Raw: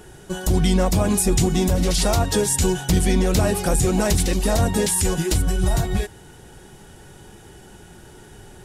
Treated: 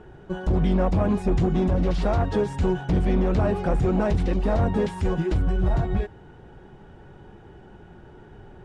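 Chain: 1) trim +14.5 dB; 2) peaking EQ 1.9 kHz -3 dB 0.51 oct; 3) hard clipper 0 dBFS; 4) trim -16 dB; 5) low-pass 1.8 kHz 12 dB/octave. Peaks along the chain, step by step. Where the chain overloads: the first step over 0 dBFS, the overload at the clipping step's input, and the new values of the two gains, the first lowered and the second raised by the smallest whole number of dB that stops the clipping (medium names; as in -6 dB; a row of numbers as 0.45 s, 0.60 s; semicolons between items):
+6.5 dBFS, +6.5 dBFS, 0.0 dBFS, -16.0 dBFS, -15.5 dBFS; step 1, 6.5 dB; step 1 +7.5 dB, step 4 -9 dB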